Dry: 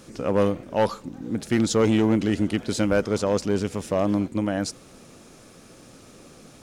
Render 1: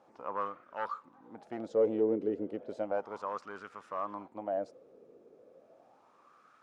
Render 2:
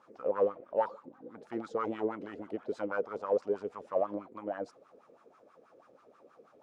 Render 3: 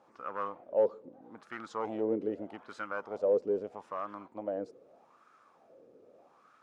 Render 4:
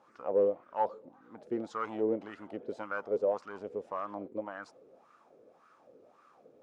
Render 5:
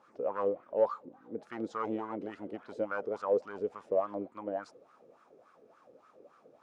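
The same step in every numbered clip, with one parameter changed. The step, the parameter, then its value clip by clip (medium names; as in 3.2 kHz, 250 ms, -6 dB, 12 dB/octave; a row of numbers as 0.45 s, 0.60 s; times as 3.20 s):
wah-wah, rate: 0.34 Hz, 6.2 Hz, 0.8 Hz, 1.8 Hz, 3.5 Hz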